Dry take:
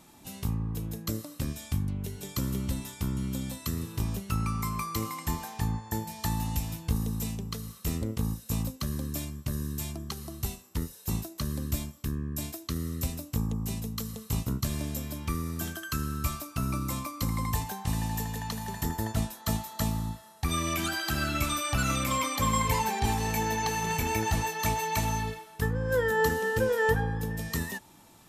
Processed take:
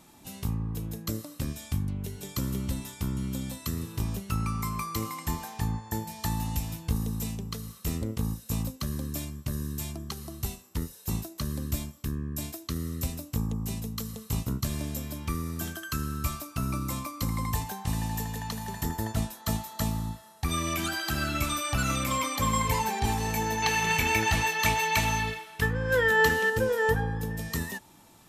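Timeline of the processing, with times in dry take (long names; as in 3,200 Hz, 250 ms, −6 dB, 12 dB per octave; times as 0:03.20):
0:23.62–0:26.50: parametric band 2,500 Hz +10 dB 1.8 octaves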